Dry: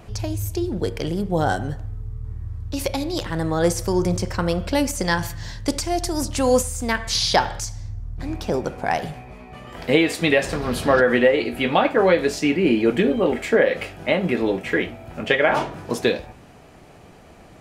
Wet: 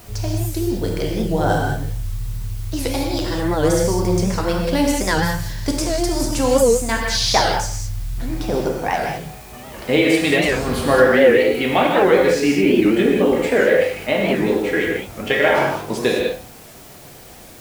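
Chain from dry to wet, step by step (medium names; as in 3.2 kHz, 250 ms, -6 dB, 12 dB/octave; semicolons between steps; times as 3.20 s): in parallel at -8 dB: word length cut 6-bit, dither triangular; on the sum: gated-style reverb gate 230 ms flat, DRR -1 dB; warped record 78 rpm, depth 160 cents; trim -3.5 dB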